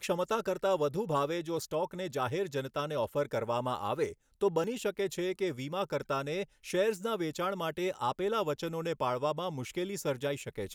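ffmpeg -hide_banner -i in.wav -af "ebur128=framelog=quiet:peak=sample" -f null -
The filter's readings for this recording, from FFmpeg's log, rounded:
Integrated loudness:
  I:         -33.4 LUFS
  Threshold: -43.4 LUFS
Loudness range:
  LRA:         1.0 LU
  Threshold: -53.5 LUFS
  LRA low:   -34.0 LUFS
  LRA high:  -33.0 LUFS
Sample peak:
  Peak:      -17.5 dBFS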